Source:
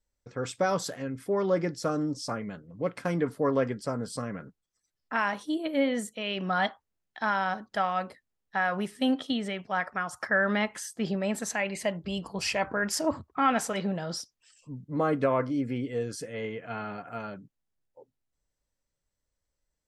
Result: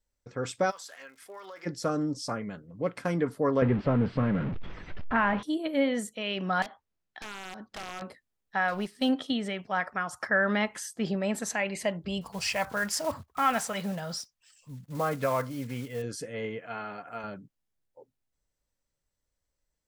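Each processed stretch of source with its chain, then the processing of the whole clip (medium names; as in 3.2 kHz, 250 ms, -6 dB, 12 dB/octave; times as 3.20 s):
0.70–1.65 s: high-pass 1.1 kHz + compression 10:1, threshold -40 dBFS + crackle 220 per s -52 dBFS
3.62–5.43 s: jump at every zero crossing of -33.5 dBFS + low-pass 2.8 kHz 24 dB/octave + bass shelf 280 Hz +10 dB
6.62–8.02 s: compression, threshold -34 dBFS + integer overflow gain 31 dB + distance through air 56 m
8.68–9.09 s: companding laws mixed up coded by A + peaking EQ 4.5 kHz +7 dB 0.58 oct + upward compressor, threshold -49 dBFS
12.21–16.04 s: block-companded coder 5-bit + peaking EQ 330 Hz -11 dB 0.8 oct
16.59–17.24 s: high-pass 48 Hz + bass shelf 250 Hz -10 dB
whole clip: none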